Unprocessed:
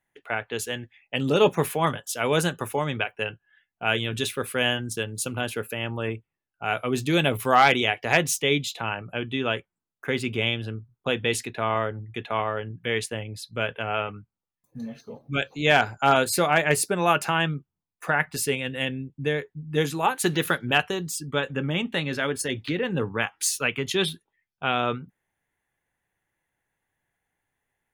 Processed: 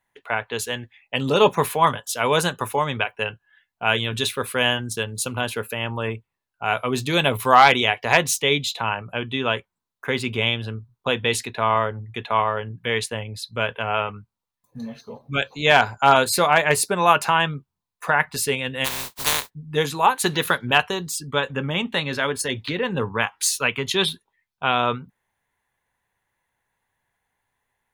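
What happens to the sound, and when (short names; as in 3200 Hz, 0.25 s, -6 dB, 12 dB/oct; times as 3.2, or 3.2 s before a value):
18.84–19.49 spectral contrast lowered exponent 0.14
whole clip: thirty-one-band EQ 160 Hz -4 dB, 315 Hz -7 dB, 1000 Hz +8 dB, 4000 Hz +5 dB; gain +3 dB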